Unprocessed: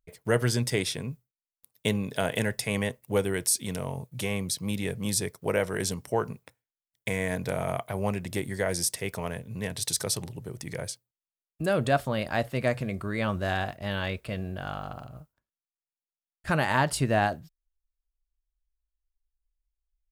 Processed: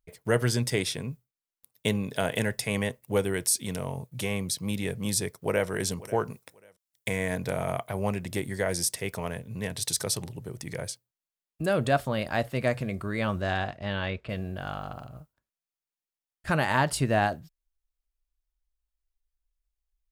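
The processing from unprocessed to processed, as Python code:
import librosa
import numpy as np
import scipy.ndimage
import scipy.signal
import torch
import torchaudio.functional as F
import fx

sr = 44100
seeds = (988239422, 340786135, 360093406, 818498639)

y = fx.echo_throw(x, sr, start_s=5.26, length_s=0.42, ms=540, feedback_pct=25, wet_db=-18.0)
y = fx.bass_treble(y, sr, bass_db=-4, treble_db=7, at=(6.3, 7.08))
y = fx.lowpass(y, sr, hz=fx.line((13.41, 7500.0), (14.28, 3500.0)), slope=12, at=(13.41, 14.28), fade=0.02)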